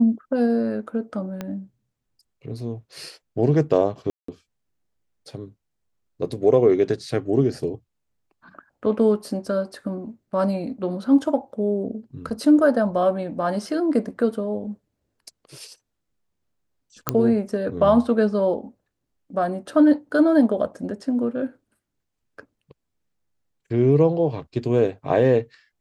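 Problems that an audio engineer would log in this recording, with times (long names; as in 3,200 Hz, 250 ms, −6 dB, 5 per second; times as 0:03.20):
0:01.41: click −16 dBFS
0:04.10–0:04.28: drop-out 184 ms
0:17.09: click −3 dBFS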